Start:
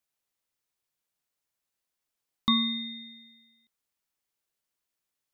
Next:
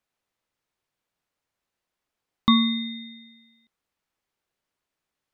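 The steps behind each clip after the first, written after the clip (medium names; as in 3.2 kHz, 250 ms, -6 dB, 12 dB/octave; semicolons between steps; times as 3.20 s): low-pass 2.2 kHz 6 dB/octave; trim +8 dB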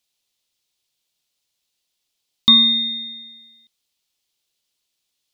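resonant high shelf 2.4 kHz +13.5 dB, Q 1.5; trim -2.5 dB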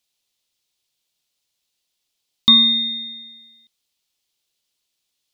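no audible change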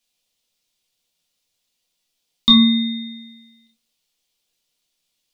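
simulated room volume 150 m³, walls furnished, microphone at 1.8 m; trim -1.5 dB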